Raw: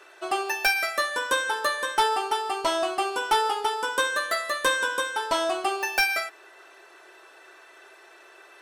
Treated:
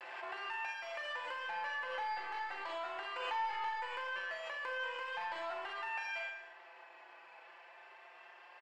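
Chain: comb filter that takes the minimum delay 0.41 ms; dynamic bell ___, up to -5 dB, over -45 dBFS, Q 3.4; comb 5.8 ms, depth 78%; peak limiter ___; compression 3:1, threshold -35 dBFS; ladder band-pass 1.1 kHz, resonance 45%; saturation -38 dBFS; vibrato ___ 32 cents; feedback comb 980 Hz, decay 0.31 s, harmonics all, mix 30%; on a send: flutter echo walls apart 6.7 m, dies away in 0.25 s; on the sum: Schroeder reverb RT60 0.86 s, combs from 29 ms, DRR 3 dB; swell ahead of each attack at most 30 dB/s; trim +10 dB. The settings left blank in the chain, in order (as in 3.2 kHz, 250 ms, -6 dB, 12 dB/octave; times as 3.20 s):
700 Hz, -19 dBFS, 0.39 Hz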